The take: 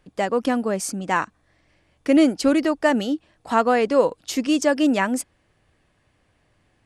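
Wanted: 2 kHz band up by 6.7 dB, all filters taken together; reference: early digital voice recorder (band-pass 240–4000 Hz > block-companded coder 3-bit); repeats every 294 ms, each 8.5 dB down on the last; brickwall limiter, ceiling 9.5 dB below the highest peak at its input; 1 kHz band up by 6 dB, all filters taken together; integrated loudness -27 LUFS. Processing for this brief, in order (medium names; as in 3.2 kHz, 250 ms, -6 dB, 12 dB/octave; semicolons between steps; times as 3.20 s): peaking EQ 1 kHz +6 dB; peaking EQ 2 kHz +6.5 dB; peak limiter -10 dBFS; band-pass 240–4000 Hz; feedback delay 294 ms, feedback 38%, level -8.5 dB; block-companded coder 3-bit; trim -5 dB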